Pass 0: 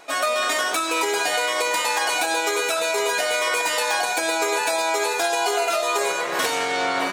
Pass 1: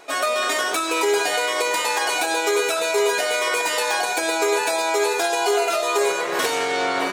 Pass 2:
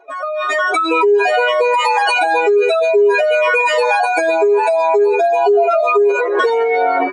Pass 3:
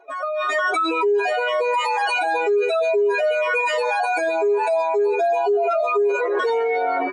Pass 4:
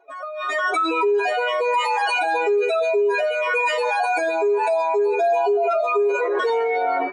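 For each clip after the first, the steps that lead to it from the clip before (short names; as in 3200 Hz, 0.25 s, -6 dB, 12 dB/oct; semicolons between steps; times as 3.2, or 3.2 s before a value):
bell 400 Hz +6.5 dB 0.41 oct
spectral contrast raised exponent 2.7; AGC gain up to 11.5 dB; gain -1.5 dB
limiter -10.5 dBFS, peak gain reduction 6 dB; gain -3.5 dB
AGC gain up to 6 dB; on a send at -16 dB: reverb, pre-delay 3 ms; on the sum: gain -6 dB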